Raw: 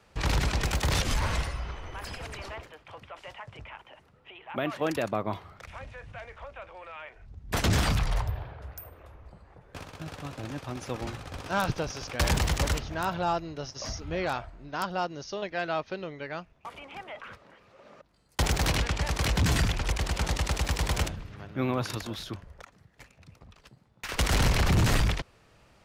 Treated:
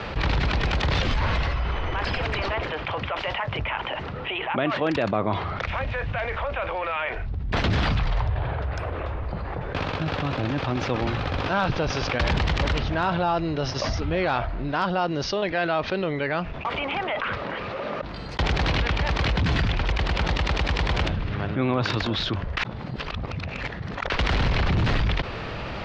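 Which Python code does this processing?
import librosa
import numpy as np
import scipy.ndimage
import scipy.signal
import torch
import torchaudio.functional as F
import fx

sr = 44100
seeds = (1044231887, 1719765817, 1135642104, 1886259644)

y = fx.edit(x, sr, fx.reverse_span(start_s=22.57, length_s=1.53), tone=tone)
y = scipy.signal.sosfilt(scipy.signal.butter(4, 4200.0, 'lowpass', fs=sr, output='sos'), y)
y = fx.env_flatten(y, sr, amount_pct=70)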